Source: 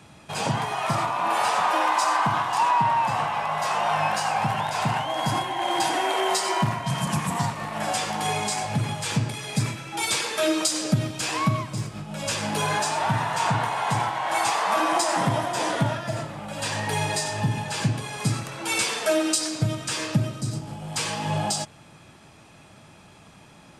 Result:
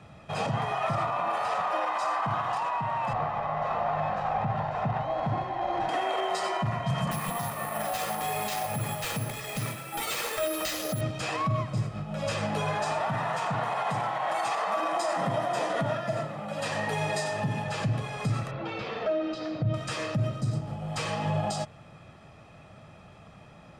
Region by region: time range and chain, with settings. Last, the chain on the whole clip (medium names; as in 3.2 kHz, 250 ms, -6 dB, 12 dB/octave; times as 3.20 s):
3.13–5.89 s: tape spacing loss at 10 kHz 31 dB + sliding maximum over 5 samples
7.11–11.01 s: high-pass 240 Hz 6 dB/octave + careless resampling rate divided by 4×, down none, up zero stuff
13.01–17.64 s: high-pass 140 Hz 24 dB/octave + treble shelf 8.6 kHz +6 dB
18.51–19.74 s: low-pass 4.4 kHz 24 dB/octave + compression 4:1, threshold -26 dBFS + tilt shelf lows +4.5 dB, about 640 Hz
whole clip: low-pass 1.7 kHz 6 dB/octave; peak limiter -20.5 dBFS; comb 1.6 ms, depth 41%